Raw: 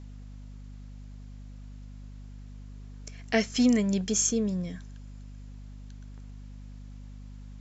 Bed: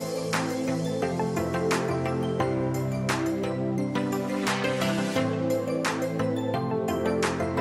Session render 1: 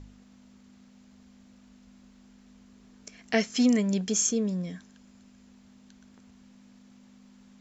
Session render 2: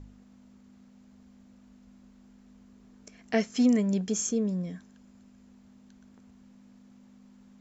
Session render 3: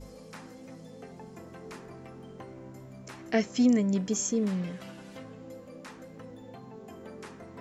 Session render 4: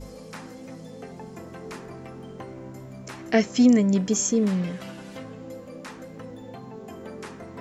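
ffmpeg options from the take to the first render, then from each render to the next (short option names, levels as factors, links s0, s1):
-af "bandreject=f=50:t=h:w=4,bandreject=f=100:t=h:w=4,bandreject=f=150:t=h:w=4"
-af "equalizer=f=4100:w=0.41:g=-7"
-filter_complex "[1:a]volume=0.106[s0];[0:a][s0]amix=inputs=2:normalize=0"
-af "volume=2"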